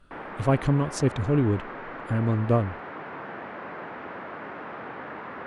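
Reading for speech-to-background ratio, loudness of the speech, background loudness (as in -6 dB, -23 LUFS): 12.5 dB, -25.5 LUFS, -38.0 LUFS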